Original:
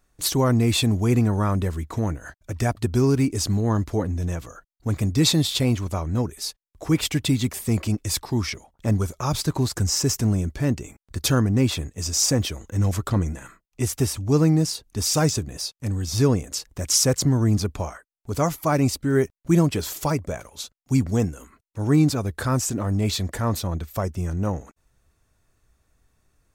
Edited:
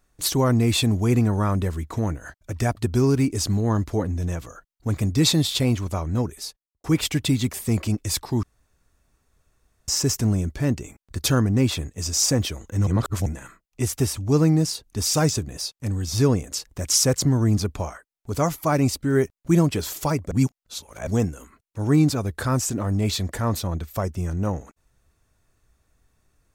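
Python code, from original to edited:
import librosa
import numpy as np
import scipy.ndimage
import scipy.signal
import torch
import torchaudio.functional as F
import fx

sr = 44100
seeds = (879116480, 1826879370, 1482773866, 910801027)

y = fx.studio_fade_out(x, sr, start_s=6.32, length_s=0.52)
y = fx.edit(y, sr, fx.room_tone_fill(start_s=8.43, length_s=1.45),
    fx.reverse_span(start_s=12.87, length_s=0.39),
    fx.reverse_span(start_s=20.31, length_s=0.76), tone=tone)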